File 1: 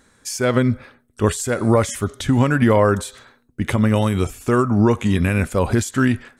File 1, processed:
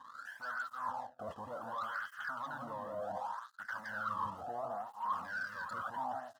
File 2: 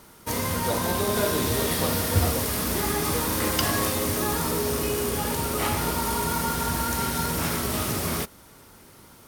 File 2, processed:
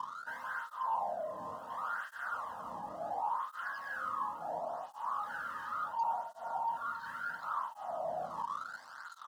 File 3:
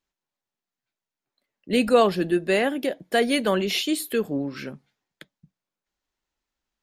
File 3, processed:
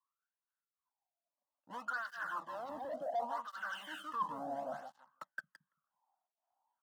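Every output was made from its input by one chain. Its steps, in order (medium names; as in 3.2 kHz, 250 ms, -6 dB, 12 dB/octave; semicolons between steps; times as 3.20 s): treble shelf 2.5 kHz +11.5 dB; gain riding within 4 dB 0.5 s; rippled Chebyshev low-pass 3.2 kHz, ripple 3 dB; peak limiter -12.5 dBFS; saturation -29.5 dBFS; feedback delay 168 ms, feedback 20%, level -4 dB; wah-wah 0.59 Hz 670–1600 Hz, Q 10; bass shelf 340 Hz +12 dB; waveshaping leveller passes 2; reverse; compression 5:1, threshold -49 dBFS; reverse; static phaser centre 960 Hz, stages 4; cancelling through-zero flanger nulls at 0.71 Hz, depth 1.5 ms; trim +16 dB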